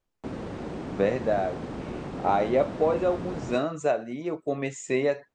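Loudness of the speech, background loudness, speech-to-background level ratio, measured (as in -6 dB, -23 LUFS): -27.5 LUFS, -36.5 LUFS, 9.0 dB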